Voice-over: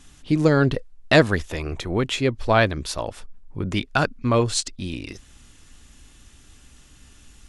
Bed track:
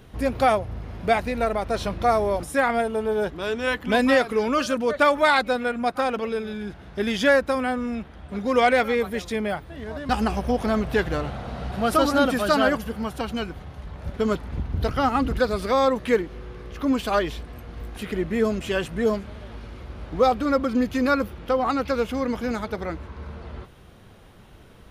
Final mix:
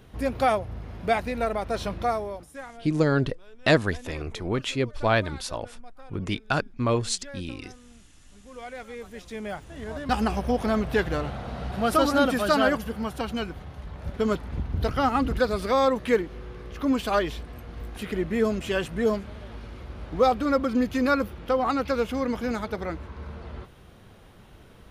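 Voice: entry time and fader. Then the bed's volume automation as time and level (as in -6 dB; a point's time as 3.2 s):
2.55 s, -4.5 dB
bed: 1.99 s -3 dB
2.87 s -25.5 dB
8.41 s -25.5 dB
9.83 s -1.5 dB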